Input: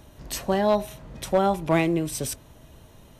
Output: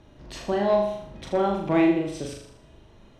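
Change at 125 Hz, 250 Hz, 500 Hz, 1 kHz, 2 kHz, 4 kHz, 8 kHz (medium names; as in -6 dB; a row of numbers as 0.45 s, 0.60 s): -4.5 dB, +2.0 dB, 0.0 dB, -2.0 dB, -2.0 dB, -4.0 dB, under -10 dB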